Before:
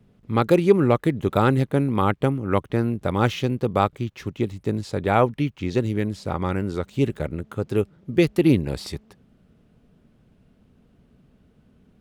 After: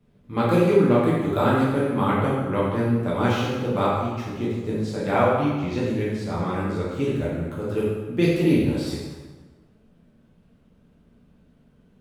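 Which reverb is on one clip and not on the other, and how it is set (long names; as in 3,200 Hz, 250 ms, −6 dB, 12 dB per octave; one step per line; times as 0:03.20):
dense smooth reverb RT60 1.3 s, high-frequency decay 0.75×, DRR −7.5 dB
level −8 dB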